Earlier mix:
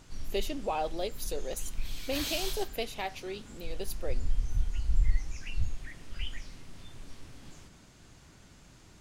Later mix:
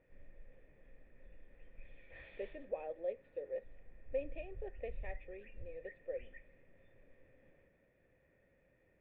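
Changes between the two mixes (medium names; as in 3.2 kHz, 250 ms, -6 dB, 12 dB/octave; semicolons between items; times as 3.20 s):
speech: entry +2.05 s; master: add cascade formant filter e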